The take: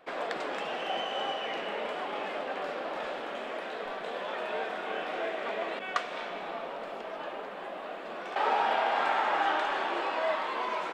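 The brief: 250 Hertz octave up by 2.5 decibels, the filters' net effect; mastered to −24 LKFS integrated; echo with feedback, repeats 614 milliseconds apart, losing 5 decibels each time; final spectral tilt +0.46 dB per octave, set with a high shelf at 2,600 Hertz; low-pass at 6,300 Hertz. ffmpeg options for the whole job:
ffmpeg -i in.wav -af "lowpass=6300,equalizer=frequency=250:width_type=o:gain=3.5,highshelf=frequency=2600:gain=3.5,aecho=1:1:614|1228|1842|2456|3070|3684|4298:0.562|0.315|0.176|0.0988|0.0553|0.031|0.0173,volume=6.5dB" out.wav

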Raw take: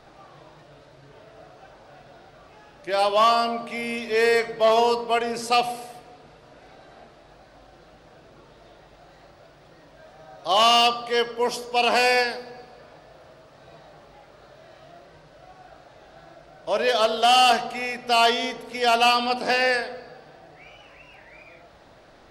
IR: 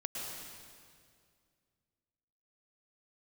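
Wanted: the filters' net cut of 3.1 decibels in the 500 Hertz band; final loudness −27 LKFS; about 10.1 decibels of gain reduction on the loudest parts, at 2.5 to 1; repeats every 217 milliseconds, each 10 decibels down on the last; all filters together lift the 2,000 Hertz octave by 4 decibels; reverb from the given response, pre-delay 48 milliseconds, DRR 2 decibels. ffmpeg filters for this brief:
-filter_complex "[0:a]equalizer=frequency=500:width_type=o:gain=-4.5,equalizer=frequency=2000:width_type=o:gain=5.5,acompressor=threshold=-29dB:ratio=2.5,aecho=1:1:217|434|651|868:0.316|0.101|0.0324|0.0104,asplit=2[link_01][link_02];[1:a]atrim=start_sample=2205,adelay=48[link_03];[link_02][link_03]afir=irnorm=-1:irlink=0,volume=-3.5dB[link_04];[link_01][link_04]amix=inputs=2:normalize=0,volume=-0.5dB"

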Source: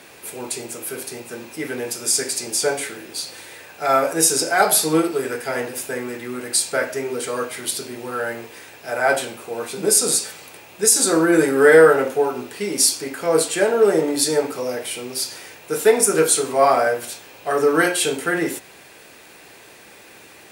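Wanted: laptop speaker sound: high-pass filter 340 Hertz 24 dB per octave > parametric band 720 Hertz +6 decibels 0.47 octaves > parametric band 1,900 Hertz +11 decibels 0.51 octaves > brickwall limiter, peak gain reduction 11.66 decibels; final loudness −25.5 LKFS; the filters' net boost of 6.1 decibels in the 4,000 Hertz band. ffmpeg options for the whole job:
ffmpeg -i in.wav -af "highpass=frequency=340:width=0.5412,highpass=frequency=340:width=1.3066,equalizer=frequency=720:width_type=o:width=0.47:gain=6,equalizer=frequency=1900:width_type=o:width=0.51:gain=11,equalizer=frequency=4000:width_type=o:gain=7,volume=-6dB,alimiter=limit=-14dB:level=0:latency=1" out.wav

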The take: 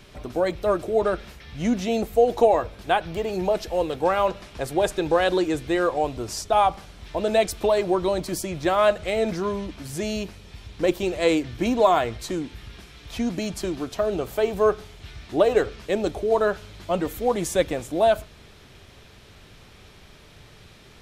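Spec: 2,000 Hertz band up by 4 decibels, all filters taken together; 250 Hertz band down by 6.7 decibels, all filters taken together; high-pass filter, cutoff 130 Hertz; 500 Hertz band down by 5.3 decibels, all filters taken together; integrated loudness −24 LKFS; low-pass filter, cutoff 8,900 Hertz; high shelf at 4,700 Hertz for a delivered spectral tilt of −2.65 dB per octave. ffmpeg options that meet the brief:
ffmpeg -i in.wav -af "highpass=130,lowpass=8900,equalizer=frequency=250:width_type=o:gain=-7,equalizer=frequency=500:width_type=o:gain=-5.5,equalizer=frequency=2000:width_type=o:gain=4,highshelf=frequency=4700:gain=9,volume=2.5dB" out.wav

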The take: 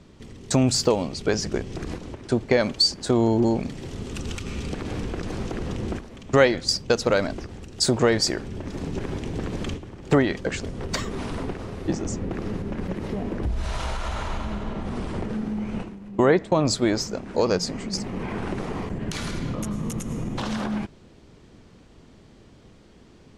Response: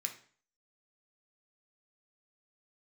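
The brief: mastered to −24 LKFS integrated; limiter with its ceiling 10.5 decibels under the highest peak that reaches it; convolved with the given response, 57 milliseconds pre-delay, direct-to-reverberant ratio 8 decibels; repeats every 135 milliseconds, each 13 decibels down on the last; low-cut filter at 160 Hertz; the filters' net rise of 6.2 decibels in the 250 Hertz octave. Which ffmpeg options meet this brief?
-filter_complex "[0:a]highpass=160,equalizer=frequency=250:width_type=o:gain=8.5,alimiter=limit=-12.5dB:level=0:latency=1,aecho=1:1:135|270|405:0.224|0.0493|0.0108,asplit=2[link_01][link_02];[1:a]atrim=start_sample=2205,adelay=57[link_03];[link_02][link_03]afir=irnorm=-1:irlink=0,volume=-7.5dB[link_04];[link_01][link_04]amix=inputs=2:normalize=0,volume=1.5dB"

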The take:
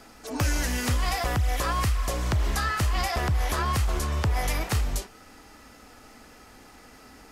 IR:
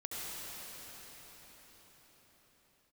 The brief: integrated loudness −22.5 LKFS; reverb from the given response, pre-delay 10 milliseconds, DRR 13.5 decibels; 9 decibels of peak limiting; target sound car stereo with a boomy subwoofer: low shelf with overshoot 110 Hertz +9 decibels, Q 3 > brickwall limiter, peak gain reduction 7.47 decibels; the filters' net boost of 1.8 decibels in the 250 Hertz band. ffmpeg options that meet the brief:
-filter_complex "[0:a]equalizer=frequency=250:width_type=o:gain=5,alimiter=limit=-23.5dB:level=0:latency=1,asplit=2[link_01][link_02];[1:a]atrim=start_sample=2205,adelay=10[link_03];[link_02][link_03]afir=irnorm=-1:irlink=0,volume=-16dB[link_04];[link_01][link_04]amix=inputs=2:normalize=0,lowshelf=frequency=110:width_type=q:width=3:gain=9,volume=2.5dB,alimiter=limit=-12.5dB:level=0:latency=1"

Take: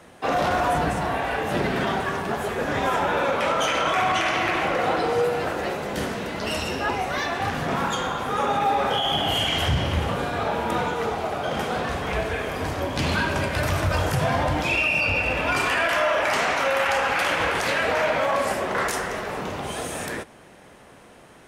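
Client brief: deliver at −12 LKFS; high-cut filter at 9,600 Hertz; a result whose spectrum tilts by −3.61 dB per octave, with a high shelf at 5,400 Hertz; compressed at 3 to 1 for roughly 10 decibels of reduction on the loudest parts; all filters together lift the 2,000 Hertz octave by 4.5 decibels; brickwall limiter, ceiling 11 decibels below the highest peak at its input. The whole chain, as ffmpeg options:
ffmpeg -i in.wav -af "lowpass=9600,equalizer=frequency=2000:width_type=o:gain=5,highshelf=frequency=5400:gain=6.5,acompressor=threshold=-30dB:ratio=3,volume=21.5dB,alimiter=limit=-4dB:level=0:latency=1" out.wav

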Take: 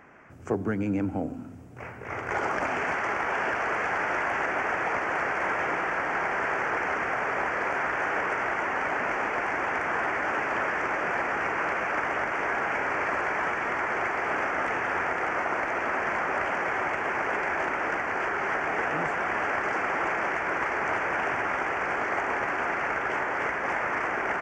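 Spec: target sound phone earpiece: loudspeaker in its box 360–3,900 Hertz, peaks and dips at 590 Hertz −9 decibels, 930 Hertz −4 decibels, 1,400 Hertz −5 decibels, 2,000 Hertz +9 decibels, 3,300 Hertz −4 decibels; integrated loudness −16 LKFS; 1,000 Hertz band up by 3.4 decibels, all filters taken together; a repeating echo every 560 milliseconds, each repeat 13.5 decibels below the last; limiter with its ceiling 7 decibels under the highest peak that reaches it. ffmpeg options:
ffmpeg -i in.wav -af "equalizer=frequency=1000:width_type=o:gain=9,alimiter=limit=-16dB:level=0:latency=1,highpass=360,equalizer=frequency=590:width_type=q:width=4:gain=-9,equalizer=frequency=930:width_type=q:width=4:gain=-4,equalizer=frequency=1400:width_type=q:width=4:gain=-5,equalizer=frequency=2000:width_type=q:width=4:gain=9,equalizer=frequency=3300:width_type=q:width=4:gain=-4,lowpass=frequency=3900:width=0.5412,lowpass=frequency=3900:width=1.3066,aecho=1:1:560|1120:0.211|0.0444,volume=9dB" out.wav

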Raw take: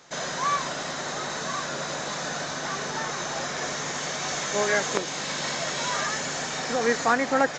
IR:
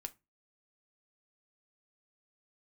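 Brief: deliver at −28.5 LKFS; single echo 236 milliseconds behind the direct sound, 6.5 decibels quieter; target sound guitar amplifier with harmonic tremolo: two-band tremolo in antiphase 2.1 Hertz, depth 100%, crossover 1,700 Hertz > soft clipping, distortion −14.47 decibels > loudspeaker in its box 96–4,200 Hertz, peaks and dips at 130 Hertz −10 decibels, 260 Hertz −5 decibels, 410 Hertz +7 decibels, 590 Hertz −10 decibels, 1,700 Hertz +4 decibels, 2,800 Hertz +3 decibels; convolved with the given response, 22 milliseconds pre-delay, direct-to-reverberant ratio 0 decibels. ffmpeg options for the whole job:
-filter_complex "[0:a]aecho=1:1:236:0.473,asplit=2[link_01][link_02];[1:a]atrim=start_sample=2205,adelay=22[link_03];[link_02][link_03]afir=irnorm=-1:irlink=0,volume=3.5dB[link_04];[link_01][link_04]amix=inputs=2:normalize=0,acrossover=split=1700[link_05][link_06];[link_05]aeval=exprs='val(0)*(1-1/2+1/2*cos(2*PI*2.1*n/s))':channel_layout=same[link_07];[link_06]aeval=exprs='val(0)*(1-1/2-1/2*cos(2*PI*2.1*n/s))':channel_layout=same[link_08];[link_07][link_08]amix=inputs=2:normalize=0,asoftclip=threshold=-18dB,highpass=96,equalizer=frequency=130:width_type=q:width=4:gain=-10,equalizer=frequency=260:width_type=q:width=4:gain=-5,equalizer=frequency=410:width_type=q:width=4:gain=7,equalizer=frequency=590:width_type=q:width=4:gain=-10,equalizer=frequency=1700:width_type=q:width=4:gain=4,equalizer=frequency=2800:width_type=q:width=4:gain=3,lowpass=frequency=4200:width=0.5412,lowpass=frequency=4200:width=1.3066,volume=1.5dB"

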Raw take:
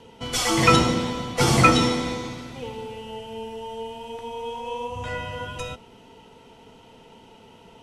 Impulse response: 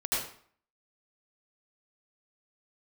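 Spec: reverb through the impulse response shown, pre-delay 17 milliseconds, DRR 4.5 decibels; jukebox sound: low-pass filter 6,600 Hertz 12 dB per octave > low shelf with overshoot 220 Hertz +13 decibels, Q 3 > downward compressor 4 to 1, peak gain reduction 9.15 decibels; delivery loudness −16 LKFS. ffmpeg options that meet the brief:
-filter_complex "[0:a]asplit=2[link_01][link_02];[1:a]atrim=start_sample=2205,adelay=17[link_03];[link_02][link_03]afir=irnorm=-1:irlink=0,volume=-12.5dB[link_04];[link_01][link_04]amix=inputs=2:normalize=0,lowpass=6600,lowshelf=frequency=220:width_type=q:width=3:gain=13,acompressor=threshold=-8dB:ratio=4"

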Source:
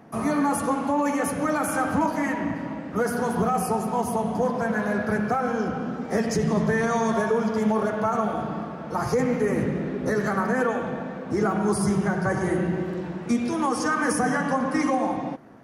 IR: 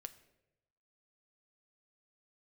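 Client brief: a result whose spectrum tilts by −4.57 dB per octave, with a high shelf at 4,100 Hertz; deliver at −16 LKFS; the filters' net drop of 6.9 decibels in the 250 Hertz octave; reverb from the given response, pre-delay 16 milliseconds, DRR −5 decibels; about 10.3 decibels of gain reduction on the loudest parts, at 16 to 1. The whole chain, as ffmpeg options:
-filter_complex "[0:a]equalizer=frequency=250:width_type=o:gain=-9,highshelf=frequency=4100:gain=4.5,acompressor=threshold=-31dB:ratio=16,asplit=2[link_01][link_02];[1:a]atrim=start_sample=2205,adelay=16[link_03];[link_02][link_03]afir=irnorm=-1:irlink=0,volume=10dB[link_04];[link_01][link_04]amix=inputs=2:normalize=0,volume=13dB"

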